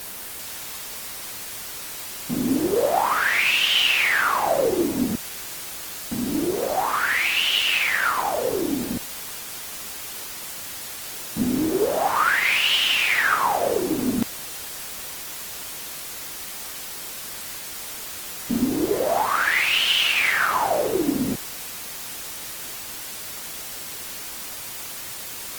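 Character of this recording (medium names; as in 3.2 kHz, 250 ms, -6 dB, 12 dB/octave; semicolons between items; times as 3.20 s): a quantiser's noise floor 6-bit, dither triangular; Opus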